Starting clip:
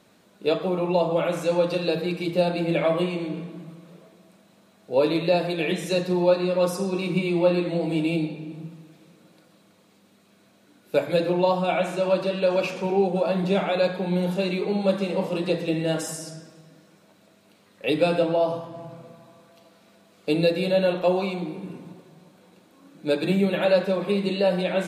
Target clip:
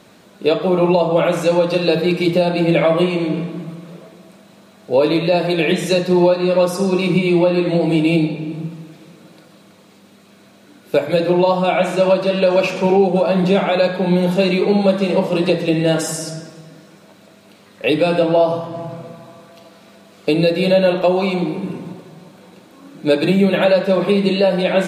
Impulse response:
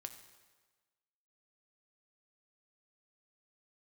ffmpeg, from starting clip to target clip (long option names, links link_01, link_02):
-filter_complex "[0:a]alimiter=limit=-16dB:level=0:latency=1:release=331,asplit=2[link_01][link_02];[1:a]atrim=start_sample=2205,lowpass=9000[link_03];[link_02][link_03]afir=irnorm=-1:irlink=0,volume=-6.5dB[link_04];[link_01][link_04]amix=inputs=2:normalize=0,volume=9dB"